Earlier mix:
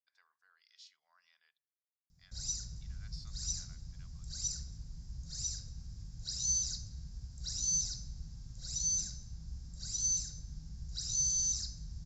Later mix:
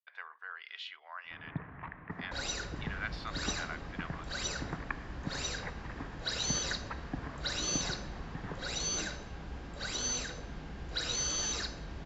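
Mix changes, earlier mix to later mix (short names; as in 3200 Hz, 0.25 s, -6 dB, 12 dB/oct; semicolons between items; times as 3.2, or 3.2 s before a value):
first sound: unmuted; master: remove EQ curve 140 Hz 0 dB, 370 Hz -28 dB, 3000 Hz -25 dB, 5200 Hz +4 dB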